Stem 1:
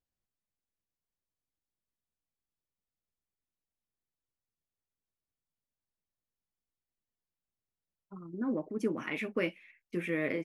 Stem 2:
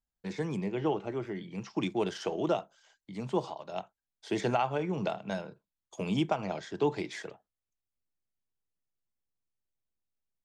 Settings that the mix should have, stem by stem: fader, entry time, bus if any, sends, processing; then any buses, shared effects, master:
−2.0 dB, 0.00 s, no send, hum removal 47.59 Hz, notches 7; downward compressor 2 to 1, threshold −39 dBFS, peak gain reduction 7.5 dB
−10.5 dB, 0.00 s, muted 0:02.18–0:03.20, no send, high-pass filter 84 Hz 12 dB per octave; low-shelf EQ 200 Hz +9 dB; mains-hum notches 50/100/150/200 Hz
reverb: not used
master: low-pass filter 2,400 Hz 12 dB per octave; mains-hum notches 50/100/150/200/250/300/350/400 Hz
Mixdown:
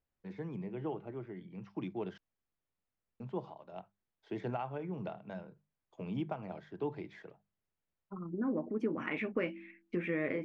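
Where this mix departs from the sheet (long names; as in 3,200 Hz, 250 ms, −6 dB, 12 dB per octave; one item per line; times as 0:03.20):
stem 1 −2.0 dB → +4.5 dB
master: missing mains-hum notches 50/100/150/200/250/300/350/400 Hz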